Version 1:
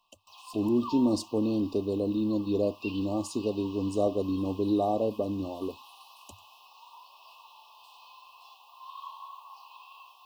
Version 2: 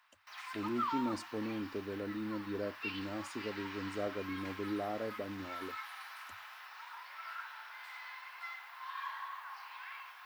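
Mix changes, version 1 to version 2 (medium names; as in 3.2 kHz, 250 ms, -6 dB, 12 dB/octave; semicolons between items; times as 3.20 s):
speech -11.5 dB; master: remove brick-wall FIR band-stop 1.2–2.5 kHz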